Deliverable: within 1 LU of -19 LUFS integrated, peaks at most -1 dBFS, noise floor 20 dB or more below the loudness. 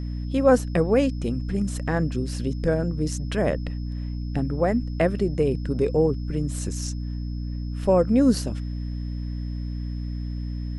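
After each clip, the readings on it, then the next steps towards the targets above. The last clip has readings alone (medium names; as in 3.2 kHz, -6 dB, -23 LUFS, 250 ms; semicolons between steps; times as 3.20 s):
hum 60 Hz; highest harmonic 300 Hz; hum level -27 dBFS; steady tone 5.2 kHz; tone level -53 dBFS; loudness -25.0 LUFS; peak level -6.5 dBFS; loudness target -19.0 LUFS
-> de-hum 60 Hz, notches 5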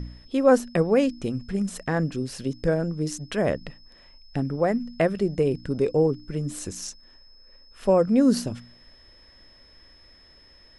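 hum not found; steady tone 5.2 kHz; tone level -53 dBFS
-> band-stop 5.2 kHz, Q 30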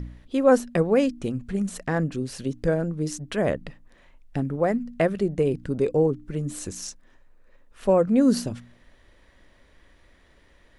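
steady tone not found; loudness -25.0 LUFS; peak level -7.5 dBFS; loudness target -19.0 LUFS
-> trim +6 dB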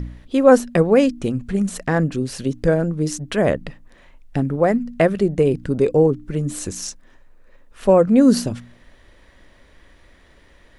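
loudness -19.0 LUFS; peak level -1.5 dBFS; noise floor -51 dBFS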